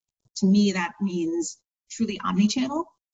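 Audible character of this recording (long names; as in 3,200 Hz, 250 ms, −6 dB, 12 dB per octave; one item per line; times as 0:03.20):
a quantiser's noise floor 12 bits, dither none
phaser sweep stages 2, 0.78 Hz, lowest notch 540–2,100 Hz
tremolo triangle 0.9 Hz, depth 60%
Ogg Vorbis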